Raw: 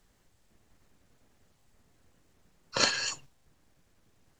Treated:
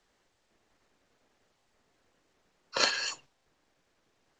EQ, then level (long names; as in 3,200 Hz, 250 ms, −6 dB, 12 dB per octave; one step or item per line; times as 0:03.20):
three-way crossover with the lows and the highs turned down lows −13 dB, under 290 Hz, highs −16 dB, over 7,100 Hz
0.0 dB